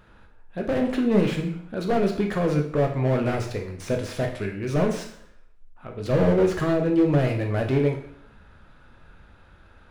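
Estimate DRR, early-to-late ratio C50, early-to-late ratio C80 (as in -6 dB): 2.5 dB, 7.5 dB, 11.5 dB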